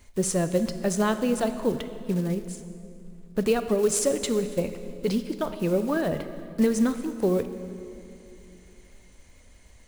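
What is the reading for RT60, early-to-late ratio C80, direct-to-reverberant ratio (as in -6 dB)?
2.6 s, 11.5 dB, 10.0 dB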